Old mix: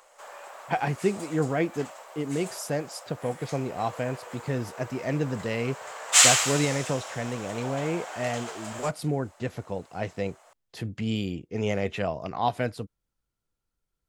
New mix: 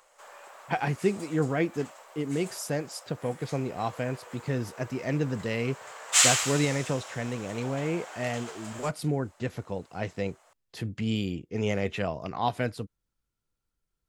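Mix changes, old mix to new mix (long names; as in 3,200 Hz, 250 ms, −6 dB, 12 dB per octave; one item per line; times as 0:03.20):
background −3.5 dB
master: add parametric band 680 Hz −3 dB 0.86 octaves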